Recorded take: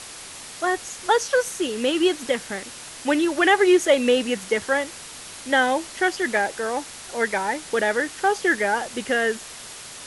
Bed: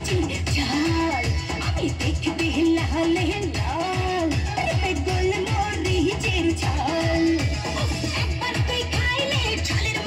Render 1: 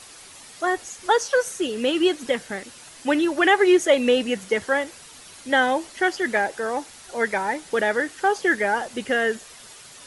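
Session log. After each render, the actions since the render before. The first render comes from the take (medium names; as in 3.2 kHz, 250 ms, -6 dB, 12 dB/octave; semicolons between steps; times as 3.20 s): noise reduction 8 dB, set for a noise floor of -39 dBFS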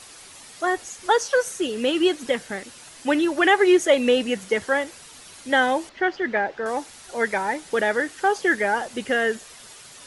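5.89–6.66 s: distance through air 220 m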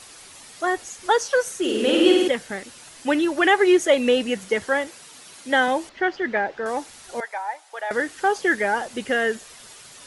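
1.59–2.28 s: flutter echo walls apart 8.8 m, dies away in 1.3 s; 4.87–5.68 s: high-pass 130 Hz; 7.20–7.91 s: ladder high-pass 660 Hz, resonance 55%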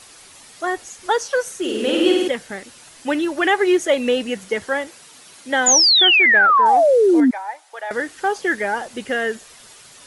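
short-mantissa float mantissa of 6-bit; 5.66–7.31 s: painted sound fall 240–7200 Hz -13 dBFS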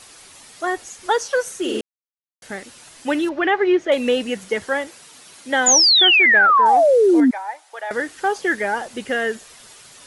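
1.81–2.42 s: mute; 3.29–3.92 s: distance through air 240 m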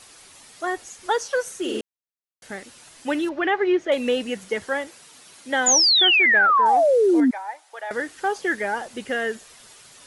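trim -3.5 dB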